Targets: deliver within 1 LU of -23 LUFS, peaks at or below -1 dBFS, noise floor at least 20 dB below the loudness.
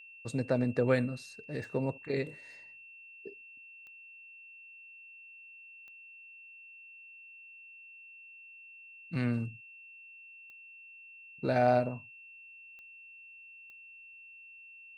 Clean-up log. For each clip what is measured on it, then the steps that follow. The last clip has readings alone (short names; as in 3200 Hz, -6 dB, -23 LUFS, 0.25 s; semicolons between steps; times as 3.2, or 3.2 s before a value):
clicks 6; steady tone 2700 Hz; tone level -50 dBFS; loudness -32.5 LUFS; peak -14.0 dBFS; loudness target -23.0 LUFS
-> de-click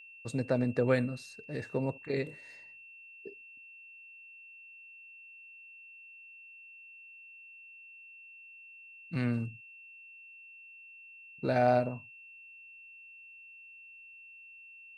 clicks 0; steady tone 2700 Hz; tone level -50 dBFS
-> notch 2700 Hz, Q 30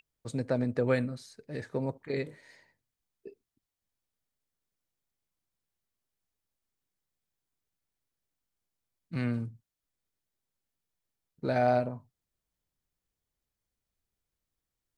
steady tone none; loudness -32.0 LUFS; peak -14.0 dBFS; loudness target -23.0 LUFS
-> gain +9 dB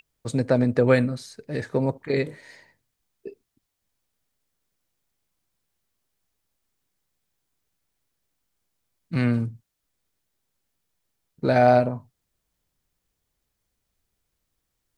loudness -23.0 LUFS; peak -5.0 dBFS; noise floor -79 dBFS